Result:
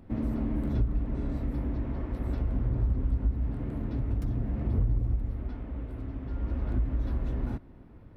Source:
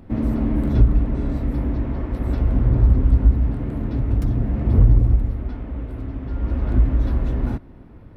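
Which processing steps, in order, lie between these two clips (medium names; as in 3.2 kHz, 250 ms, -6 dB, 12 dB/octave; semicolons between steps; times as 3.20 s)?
compression 2:1, threshold -19 dBFS, peak gain reduction 6.5 dB; trim -7.5 dB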